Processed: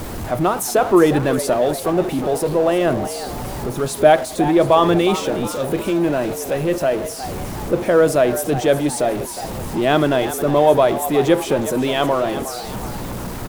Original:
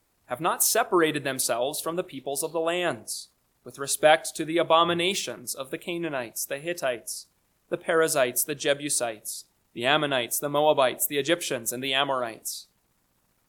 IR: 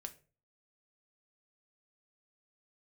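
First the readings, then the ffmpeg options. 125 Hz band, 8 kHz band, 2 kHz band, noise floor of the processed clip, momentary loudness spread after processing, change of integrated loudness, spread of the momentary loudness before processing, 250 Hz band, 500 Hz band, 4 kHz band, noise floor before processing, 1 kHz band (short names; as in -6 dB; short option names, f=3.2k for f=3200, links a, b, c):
+15.5 dB, -0.5 dB, +2.5 dB, -29 dBFS, 13 LU, +7.5 dB, 13 LU, +13.0 dB, +10.0 dB, 0.0 dB, -70 dBFS, +7.0 dB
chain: -filter_complex "[0:a]aeval=exprs='val(0)+0.5*0.0447*sgn(val(0))':c=same,tiltshelf=f=1.1k:g=7.5,asplit=6[a][b][c][d][e][f];[b]adelay=362,afreqshift=110,volume=-12.5dB[g];[c]adelay=724,afreqshift=220,volume=-19.2dB[h];[d]adelay=1086,afreqshift=330,volume=-26dB[i];[e]adelay=1448,afreqshift=440,volume=-32.7dB[j];[f]adelay=1810,afreqshift=550,volume=-39.5dB[k];[a][g][h][i][j][k]amix=inputs=6:normalize=0,volume=3dB"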